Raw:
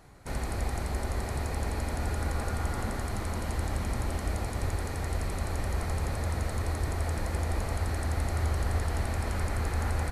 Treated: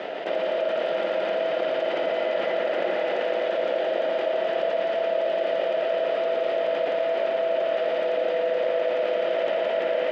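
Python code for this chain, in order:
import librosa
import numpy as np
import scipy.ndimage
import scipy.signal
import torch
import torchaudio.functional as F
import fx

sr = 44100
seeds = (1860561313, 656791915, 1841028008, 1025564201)

y = x * np.sin(2.0 * np.pi * 580.0 * np.arange(len(x)) / sr)
y = fx.cabinet(y, sr, low_hz=210.0, low_slope=24, high_hz=3900.0, hz=(240.0, 360.0, 640.0, 1100.0, 1900.0, 3100.0), db=(-5, 6, 6, -8, 5, 9))
y = fx.echo_thinned(y, sr, ms=112, feedback_pct=80, hz=420.0, wet_db=-6.5)
y = fx.env_flatten(y, sr, amount_pct=70)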